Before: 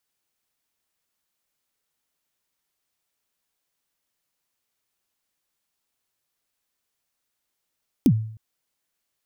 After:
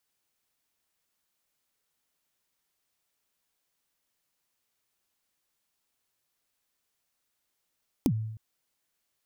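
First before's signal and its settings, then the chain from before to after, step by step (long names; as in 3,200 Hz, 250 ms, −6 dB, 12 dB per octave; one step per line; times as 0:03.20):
synth kick length 0.31 s, from 310 Hz, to 110 Hz, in 65 ms, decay 0.59 s, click on, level −10 dB
downward compressor 10 to 1, threshold −24 dBFS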